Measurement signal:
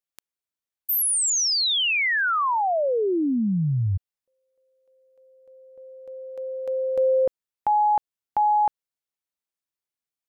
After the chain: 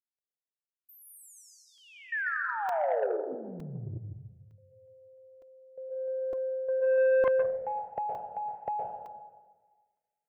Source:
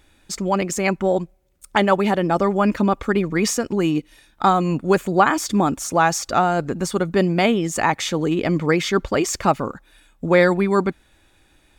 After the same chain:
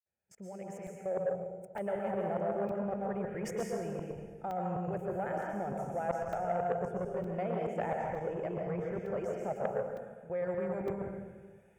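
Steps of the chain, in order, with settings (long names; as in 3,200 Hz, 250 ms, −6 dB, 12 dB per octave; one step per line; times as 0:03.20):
fade in at the beginning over 2.28 s
dynamic equaliser 580 Hz, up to +5 dB, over −31 dBFS, Q 1.5
high-pass filter 170 Hz 12 dB per octave
output level in coarse steps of 23 dB
tilt shelving filter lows +8.5 dB, about 1,100 Hz
reversed playback
downward compressor 10 to 1, threshold −29 dBFS
reversed playback
phaser with its sweep stopped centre 1,100 Hz, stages 6
dense smooth reverb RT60 1.4 s, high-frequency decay 0.85×, pre-delay 105 ms, DRR −1 dB
regular buffer underruns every 0.91 s, samples 128, zero, from 0:00.87
saturating transformer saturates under 740 Hz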